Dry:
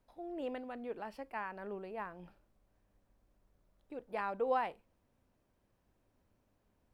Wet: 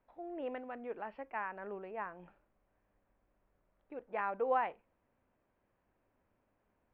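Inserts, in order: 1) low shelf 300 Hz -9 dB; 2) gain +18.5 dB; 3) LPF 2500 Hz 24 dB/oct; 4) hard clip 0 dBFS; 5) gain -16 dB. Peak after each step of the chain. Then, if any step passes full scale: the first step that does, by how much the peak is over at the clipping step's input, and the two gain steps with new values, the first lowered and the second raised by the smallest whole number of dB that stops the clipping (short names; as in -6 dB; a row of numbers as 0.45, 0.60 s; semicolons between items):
-23.5, -5.0, -5.0, -5.0, -21.0 dBFS; no overload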